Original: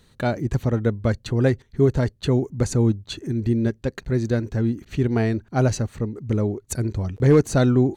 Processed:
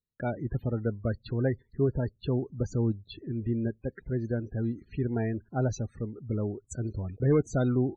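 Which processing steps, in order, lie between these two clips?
1.97–4.37 s: low-pass 3.7 kHz 6 dB/octave; loudest bins only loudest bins 32; gate -51 dBFS, range -29 dB; trim -8.5 dB

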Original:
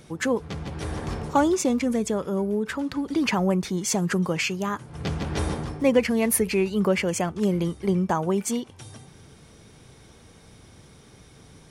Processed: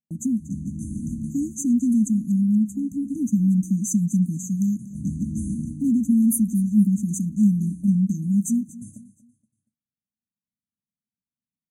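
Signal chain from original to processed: brick-wall FIR band-stop 310–6000 Hz; bass shelf 270 Hz -8 dB; in parallel at +1.5 dB: compression, threshold -38 dBFS, peak gain reduction 18 dB; on the sum: gate -41 dBFS, range -52 dB; small resonant body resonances 210/580 Hz, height 14 dB, ringing for 45 ms; on a send: feedback delay 236 ms, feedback 37%, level -18 dB; on the sum: trim -3 dB

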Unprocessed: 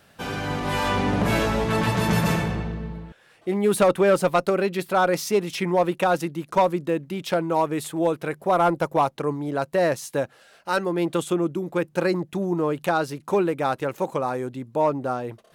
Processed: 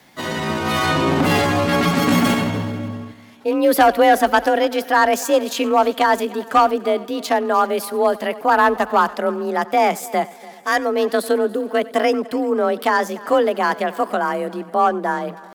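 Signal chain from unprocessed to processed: multi-head delay 96 ms, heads first and third, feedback 54%, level -21 dB; pitch shift +3.5 st; frequency shift +33 Hz; trim +5 dB

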